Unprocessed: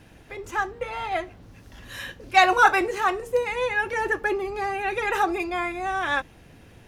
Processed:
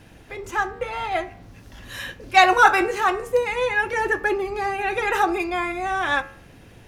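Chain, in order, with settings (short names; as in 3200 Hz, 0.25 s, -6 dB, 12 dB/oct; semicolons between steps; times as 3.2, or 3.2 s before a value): de-hum 77.53 Hz, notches 36; gain +3 dB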